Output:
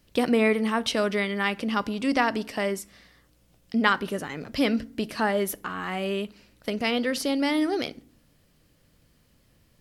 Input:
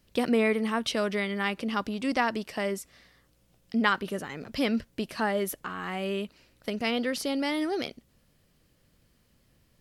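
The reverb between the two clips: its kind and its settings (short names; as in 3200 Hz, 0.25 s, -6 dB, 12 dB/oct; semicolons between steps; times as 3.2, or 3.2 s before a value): FDN reverb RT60 0.51 s, low-frequency decay 1.6×, high-frequency decay 0.65×, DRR 16.5 dB; gain +3 dB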